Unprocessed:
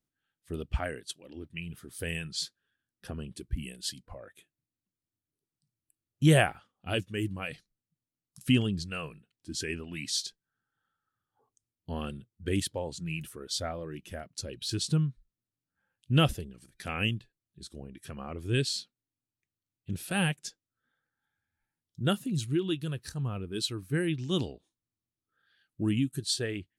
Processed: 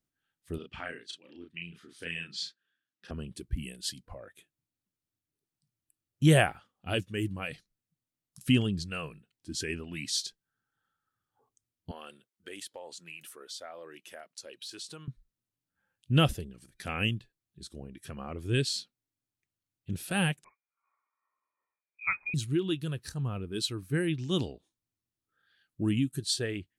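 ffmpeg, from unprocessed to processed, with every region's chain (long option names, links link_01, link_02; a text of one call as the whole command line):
ffmpeg -i in.wav -filter_complex "[0:a]asettb=1/sr,asplit=3[link_01][link_02][link_03];[link_01]atrim=end=0.584[link_04];[link_02]atrim=start=0.58:end=3.11,asetpts=PTS-STARTPTS,afade=type=in:duration=0.004:curve=qsin,afade=type=out:start_time=2.526:duration=0.004:curve=qsin,highpass=270,lowpass=4400,equalizer=frequency=620:width=0.83:gain=-10,asplit=2[link_05][link_06];[link_06]adelay=35,volume=-3.5dB[link_07];[link_05][link_07]amix=inputs=2:normalize=0,atrim=end_sample=111573[link_08];[link_03]atrim=start=3.106[link_09];[link_04][link_08]acrossfade=duration=0.004:curve1=hsin:curve2=qsin[link_10];[link_10][link_09]acrossfade=duration=0.004:curve1=qsin:curve2=hsin,asettb=1/sr,asplit=3[link_11][link_12][link_13];[link_11]atrim=end=11.914[link_14];[link_12]atrim=start=11.91:end=15.08,asetpts=PTS-STARTPTS,afade=type=in:duration=0.004:curve=qsin,afade=type=out:start_time=3.166:duration=0.004:curve=qsin,highpass=560,acompressor=threshold=-41dB:ratio=3:attack=3.2:release=140:knee=1:detection=peak[link_15];[link_13]atrim=start=15.076[link_16];[link_14][link_15]acrossfade=duration=0.004:curve1=hsin:curve2=qsin[link_17];[link_17][link_16]acrossfade=duration=0.004:curve1=qsin:curve2=hsin,asettb=1/sr,asplit=3[link_18][link_19][link_20];[link_18]atrim=end=20.444[link_21];[link_19]atrim=start=20.44:end=22.34,asetpts=PTS-STARTPTS,afade=type=in:duration=0.004:curve=qsin,afade=type=out:start_time=1.896:duration=0.004:curve=qsin,highpass=frequency=250:width=0.5412,highpass=frequency=250:width=1.3066,lowpass=frequency=2300:width_type=q:width=0.5098,lowpass=frequency=2300:width_type=q:width=0.6013,lowpass=frequency=2300:width_type=q:width=0.9,lowpass=frequency=2300:width_type=q:width=2.563,afreqshift=-2700[link_22];[link_20]atrim=start=22.336[link_23];[link_21][link_22]acrossfade=duration=0.004:curve1=hsin:curve2=qsin[link_24];[link_24][link_23]acrossfade=duration=0.004:curve1=qsin:curve2=hsin" out.wav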